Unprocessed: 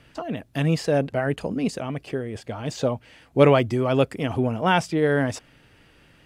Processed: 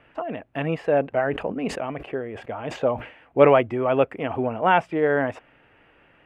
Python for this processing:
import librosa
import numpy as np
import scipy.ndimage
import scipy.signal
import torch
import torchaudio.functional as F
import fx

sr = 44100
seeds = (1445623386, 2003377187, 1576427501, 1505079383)

y = fx.curve_eq(x, sr, hz=(150.0, 320.0, 730.0, 2700.0, 4600.0), db=(0, 6, 12, 7, -14))
y = fx.sustainer(y, sr, db_per_s=120.0, at=(1.09, 3.61))
y = F.gain(torch.from_numpy(y), -8.0).numpy()